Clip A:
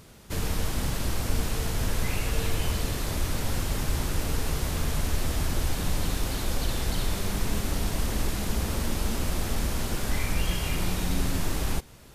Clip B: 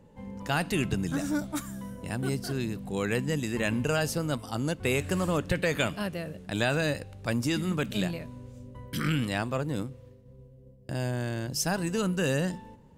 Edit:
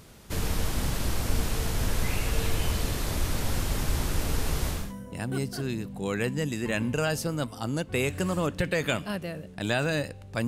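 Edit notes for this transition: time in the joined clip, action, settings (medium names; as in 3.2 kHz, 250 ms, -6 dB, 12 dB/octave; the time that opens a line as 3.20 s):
clip A
4.81 s: go over to clip B from 1.72 s, crossfade 0.26 s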